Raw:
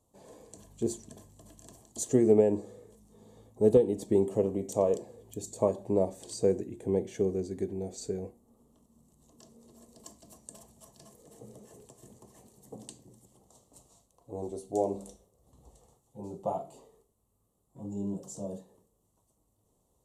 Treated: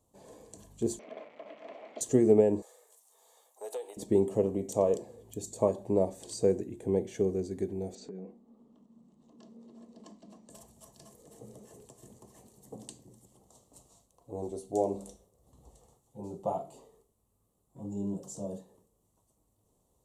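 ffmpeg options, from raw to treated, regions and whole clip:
-filter_complex "[0:a]asettb=1/sr,asplit=3[a][b][c];[a]atrim=end=0.994[d];[b]atrim=start=0.99:end=2.01,asetpts=PTS-STARTPTS,afade=t=in:d=0.004:c=qsin,afade=t=out:st=1.016:d=0.004:c=qsin,aeval=exprs='val(0)+0.5*0.00355*sgn(val(0))':c=same,acontrast=66,highpass=f=330:w=0.5412,highpass=f=330:w=1.3066,equalizer=f=360:t=q:w=4:g=-9,equalizer=f=600:t=q:w=4:g=8,equalizer=f=950:t=q:w=4:g=-4,equalizer=f=1.6k:t=q:w=4:g=-6,equalizer=f=2.2k:t=q:w=4:g=8,lowpass=f=2.7k:w=0.5412,lowpass=f=2.7k:w=1.3066[e];[c]atrim=start=2.006[f];[d][e]acrossfade=d=0.004:c1=hsin:c2=qsin[g];[g][f]acrossfade=d=0.004:c1=qsin:c2=hsin,asettb=1/sr,asplit=3[h][i][j];[h]atrim=end=2.624[k];[i]atrim=start=2.62:end=3.97,asetpts=PTS-STARTPTS,afade=t=in:d=0.004:c=qsin,afade=t=out:st=1.346:d=0.004:c=qsin,highshelf=f=7.1k:g=11.5,acompressor=threshold=-25dB:ratio=2:attack=3.2:release=140:knee=1:detection=peak,highpass=f=660:w=0.5412,highpass=f=660:w=1.3066[l];[j]atrim=start=3.966[m];[k][l]acrossfade=d=0.004:c1=hsin:c2=qsin[n];[n][m]acrossfade=d=0.004:c1=qsin:c2=hsin,asettb=1/sr,asplit=3[o][p][q];[o]atrim=end=7.954[r];[p]atrim=start=7.95:end=10.5,asetpts=PTS-STARTPTS,afade=t=in:d=0.004:c=qsin,afade=t=out:st=2.546:d=0.004:c=qsin,lowpass=3.6k,acompressor=threshold=-42dB:ratio=6:attack=3.2:release=140:knee=1:detection=peak,lowshelf=f=140:t=q:w=3:g=-11.5[s];[q]atrim=start=10.496[t];[r][s]acrossfade=d=0.004:c1=hsin:c2=qsin[u];[u][t]acrossfade=d=0.004:c1=qsin:c2=hsin"

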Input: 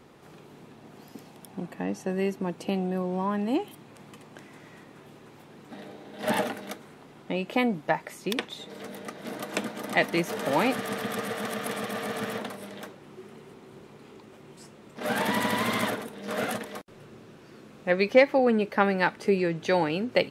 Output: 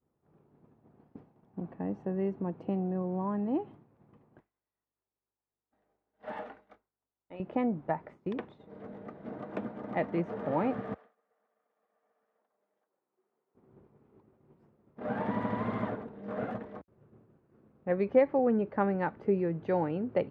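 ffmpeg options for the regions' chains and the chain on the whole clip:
-filter_complex "[0:a]asettb=1/sr,asplit=3[a][b][c];[a]atrim=end=4.404[d];[b]atrim=start=4.4:end=7.4,asetpts=PTS-STARTPTS,afade=t=in:d=0.004:c=qsin,afade=t=out:st=2.996:d=0.004:c=qsin,highpass=f=1.4k:p=1,aeval=exprs='val(0)+0.000282*(sin(2*PI*50*n/s)+sin(2*PI*2*50*n/s)/2+sin(2*PI*3*50*n/s)/3+sin(2*PI*4*50*n/s)/4+sin(2*PI*5*50*n/s)/5)':c=same,asplit=2[e][f];[f]adelay=29,volume=-11dB[g];[e][g]amix=inputs=2:normalize=0,atrim=end_sample=132300[h];[c]atrim=start=7.396[i];[d][h]acrossfade=d=0.004:c1=hsin:c2=qsin[j];[j][i]acrossfade=d=0.004:c1=qsin:c2=hsin,asettb=1/sr,asplit=3[k][l][m];[k]atrim=end=10.944[n];[l]atrim=start=10.94:end=13.55,asetpts=PTS-STARTPTS,afade=t=in:d=0.004:c=qsin,afade=t=out:st=2.606:d=0.004:c=qsin,highpass=550,acompressor=threshold=-48dB:ratio=8:attack=3.2:release=140:knee=1:detection=peak[o];[m]atrim=start=13.546[p];[n][o]acrossfade=d=0.004:c1=hsin:c2=qsin[q];[q][p]acrossfade=d=0.004:c1=qsin:c2=hsin,lowpass=1.1k,agate=range=-33dB:threshold=-41dB:ratio=3:detection=peak,equalizer=f=72:w=0.87:g=10,volume=-5dB"

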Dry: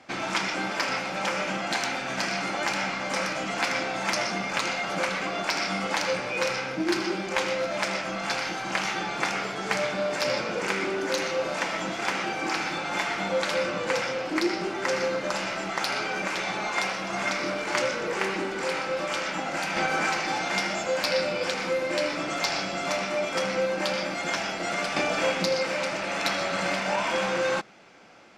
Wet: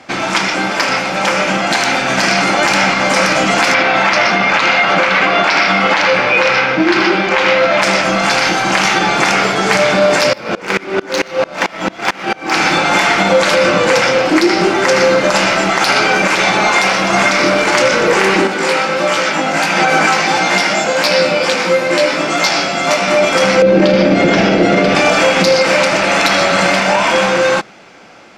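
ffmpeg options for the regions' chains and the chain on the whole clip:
-filter_complex "[0:a]asettb=1/sr,asplit=3[a][b][c];[a]atrim=end=3.744[d];[b]atrim=start=3.74:end=7.82,asetpts=PTS-STARTPTS,afade=t=in:d=0.004:c=qsin,afade=t=out:st=4.076:d=0.004:c=qsin,lowpass=3.2k,tiltshelf=f=670:g=-4[e];[c]atrim=start=7.816[f];[d][e]acrossfade=d=0.004:c1=hsin:c2=qsin[g];[g][f]acrossfade=d=0.004:c1=qsin:c2=hsin,asettb=1/sr,asplit=3[h][i][j];[h]atrim=end=10.334[k];[i]atrim=start=10.33:end=12.53,asetpts=PTS-STARTPTS,afade=t=in:d=0.004:c=qsin,afade=t=out:st=2.196:d=0.004:c=qsin,adynamicsmooth=sensitivity=4.5:basefreq=4.7k,aeval=exprs='val(0)*pow(10,-26*if(lt(mod(-4.5*n/s,1),2*abs(-4.5)/1000),1-mod(-4.5*n/s,1)/(2*abs(-4.5)/1000),(mod(-4.5*n/s,1)-2*abs(-4.5)/1000)/(1-2*abs(-4.5)/1000))/20)':c=same[l];[j]atrim=start=12.526[m];[k][l]acrossfade=d=0.004:c1=hsin:c2=qsin[n];[n][m]acrossfade=d=0.004:c1=qsin:c2=hsin,asettb=1/sr,asplit=3[o][p][q];[o]atrim=end=18.474[r];[p]atrim=start=18.47:end=23.08,asetpts=PTS-STARTPTS,afade=t=in:d=0.004:c=qsin,afade=t=out:st=4.606:d=0.004:c=qsin,highpass=f=120:w=0.5412,highpass=f=120:w=1.3066,flanger=delay=16.5:depth=2.6:speed=1.5[s];[q]atrim=start=23.076[t];[r][s]acrossfade=d=0.004:c1=hsin:c2=qsin[u];[u][t]acrossfade=d=0.004:c1=qsin:c2=hsin,asettb=1/sr,asplit=3[v][w][x];[v]atrim=end=23.624[y];[w]atrim=start=23.62:end=24.95,asetpts=PTS-STARTPTS,afade=t=in:d=0.004:c=qsin,afade=t=out:st=1.326:d=0.004:c=qsin,lowpass=4.3k,lowshelf=f=620:t=q:w=1.5:g=9.5,asplit=2[z][aa];[aa]adelay=47,volume=-10.5dB[ab];[z][ab]amix=inputs=2:normalize=0,atrim=end_sample=58653[ac];[x]atrim=start=24.946[ad];[y][ac]acrossfade=d=0.004:c1=hsin:c2=qsin[ae];[ae][ad]acrossfade=d=0.004:c1=qsin:c2=hsin,dynaudnorm=f=290:g=13:m=5dB,alimiter=level_in=14dB:limit=-1dB:release=50:level=0:latency=1,volume=-1dB"

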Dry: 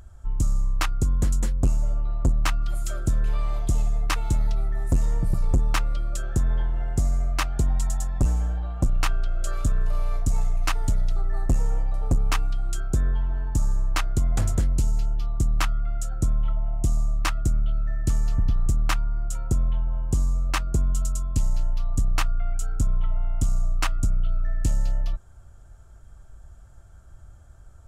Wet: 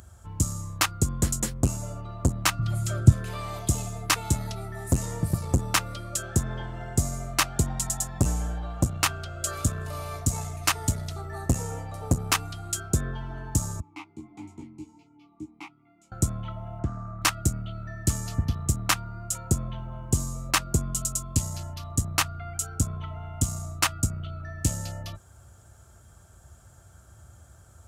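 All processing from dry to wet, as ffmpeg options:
-filter_complex "[0:a]asettb=1/sr,asplit=3[a][b][c];[a]atrim=end=2.594[d];[b]atrim=start=2.59:end=3.12,asetpts=PTS-STARTPTS,afade=t=in:d=0.004:c=qsin,afade=t=out:st=0.526:d=0.004:c=qsin,lowpass=f=3.7k:p=1,equalizer=f=120:t=o:w=1.5:g=13[e];[c]atrim=start=3.116[f];[d][e]acrossfade=d=0.004:c1=hsin:c2=qsin[g];[g][f]acrossfade=d=0.004:c1=qsin:c2=hsin,asettb=1/sr,asplit=3[h][i][j];[h]atrim=end=13.804[k];[i]atrim=start=13.8:end=16.12,asetpts=PTS-STARTPTS,afade=t=in:d=0.004:c=qsin,afade=t=out:st=2.316:d=0.004:c=qsin,flanger=delay=19.5:depth=3.1:speed=1.5,asplit=3[l][m][n];[l]bandpass=f=300:t=q:w=8,volume=0dB[o];[m]bandpass=f=870:t=q:w=8,volume=-6dB[p];[n]bandpass=f=2.24k:t=q:w=8,volume=-9dB[q];[o][p][q]amix=inputs=3:normalize=0,asplit=2[r][s];[s]adelay=13,volume=-2.5dB[t];[r][t]amix=inputs=2:normalize=0,atrim=end_sample=102312[u];[j]atrim=start=16.116[v];[k][u]acrossfade=d=0.004:c1=hsin:c2=qsin[w];[w][v]acrossfade=d=0.004:c1=qsin:c2=hsin,asettb=1/sr,asplit=3[x][y][z];[x]atrim=end=16.794[aa];[y]atrim=start=16.79:end=17.22,asetpts=PTS-STARTPTS,afade=t=in:d=0.004:c=qsin,afade=t=out:st=0.426:d=0.004:c=qsin,lowpass=f=1.5k:t=q:w=4.7,acompressor=threshold=-22dB:ratio=4:attack=3.2:release=140:knee=1:detection=peak[ab];[z]atrim=start=17.216[ac];[aa][ab]acrossfade=d=0.004:c1=hsin:c2=qsin[ad];[ad][ac]acrossfade=d=0.004:c1=qsin:c2=hsin,highpass=f=72:w=0.5412,highpass=f=72:w=1.3066,highshelf=f=4.8k:g=9.5,volume=2dB"

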